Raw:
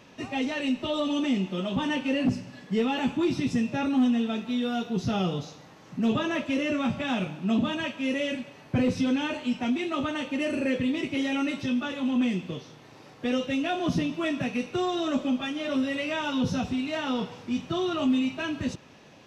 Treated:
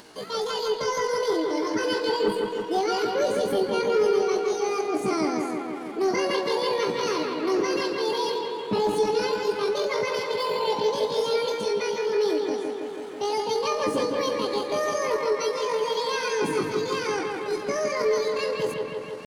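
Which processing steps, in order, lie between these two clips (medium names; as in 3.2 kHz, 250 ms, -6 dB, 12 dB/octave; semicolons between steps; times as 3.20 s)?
upward compressor, threshold -43 dBFS; pitch shift +9 st; bucket-brigade echo 162 ms, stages 4096, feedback 73%, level -4 dB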